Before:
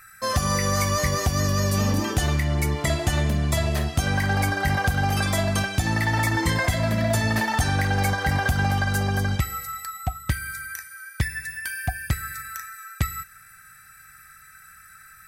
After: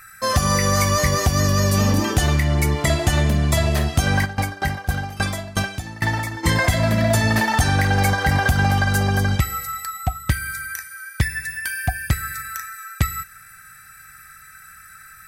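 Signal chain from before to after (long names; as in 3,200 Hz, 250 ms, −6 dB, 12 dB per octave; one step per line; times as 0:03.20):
0:04.24–0:06.43: tremolo with a ramp in dB decaying 4.8 Hz → 1.6 Hz, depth 20 dB
level +4.5 dB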